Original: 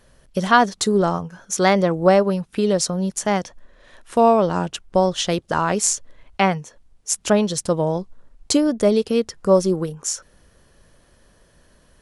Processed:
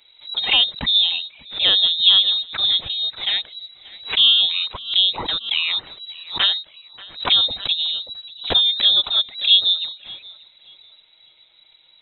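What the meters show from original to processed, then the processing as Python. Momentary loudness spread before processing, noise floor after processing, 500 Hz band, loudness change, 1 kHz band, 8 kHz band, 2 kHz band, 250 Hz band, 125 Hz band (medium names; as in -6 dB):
11 LU, -54 dBFS, -21.5 dB, +3.5 dB, -13.5 dB, under -40 dB, -1.0 dB, -22.5 dB, under -15 dB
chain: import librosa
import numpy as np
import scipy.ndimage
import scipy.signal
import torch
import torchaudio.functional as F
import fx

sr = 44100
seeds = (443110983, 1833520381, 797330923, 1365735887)

p1 = fx.env_flanger(x, sr, rest_ms=6.7, full_db=-13.0)
p2 = fx.freq_invert(p1, sr, carrier_hz=3900)
p3 = p2 + fx.echo_filtered(p2, sr, ms=584, feedback_pct=44, hz=2600.0, wet_db=-18, dry=0)
p4 = fx.pre_swell(p3, sr, db_per_s=150.0)
y = p4 * librosa.db_to_amplitude(1.5)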